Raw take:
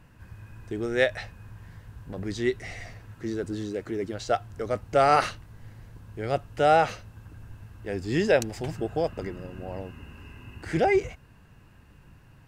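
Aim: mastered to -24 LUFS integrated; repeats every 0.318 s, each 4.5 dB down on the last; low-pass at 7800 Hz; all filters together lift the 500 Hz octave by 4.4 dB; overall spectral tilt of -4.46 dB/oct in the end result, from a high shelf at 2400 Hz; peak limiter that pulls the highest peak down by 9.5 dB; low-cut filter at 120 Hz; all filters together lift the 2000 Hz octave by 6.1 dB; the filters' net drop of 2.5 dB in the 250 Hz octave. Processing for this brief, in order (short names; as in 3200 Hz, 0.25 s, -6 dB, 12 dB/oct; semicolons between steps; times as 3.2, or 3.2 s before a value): HPF 120 Hz; LPF 7800 Hz; bell 250 Hz -8.5 dB; bell 500 Hz +7 dB; bell 2000 Hz +5 dB; high shelf 2400 Hz +5 dB; limiter -13 dBFS; feedback echo 0.318 s, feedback 60%, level -4.5 dB; gain +3 dB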